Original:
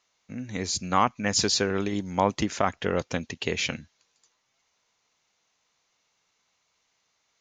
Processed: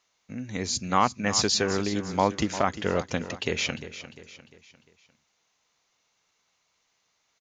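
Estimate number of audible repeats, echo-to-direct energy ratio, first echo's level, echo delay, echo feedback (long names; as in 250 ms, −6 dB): 4, −12.0 dB, −13.0 dB, 350 ms, 44%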